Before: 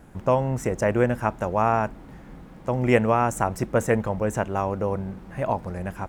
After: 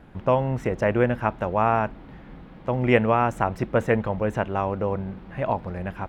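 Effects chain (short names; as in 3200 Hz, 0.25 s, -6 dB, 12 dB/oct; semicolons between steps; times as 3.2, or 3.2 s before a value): resonant high shelf 5100 Hz -12.5 dB, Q 1.5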